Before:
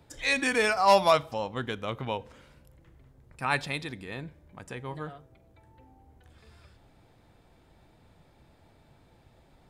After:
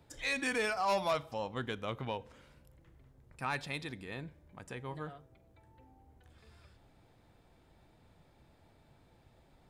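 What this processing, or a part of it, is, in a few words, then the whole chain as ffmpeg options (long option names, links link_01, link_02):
soft clipper into limiter: -af "asoftclip=type=tanh:threshold=-16.5dB,alimiter=limit=-20.5dB:level=0:latency=1:release=357,volume=-4.5dB"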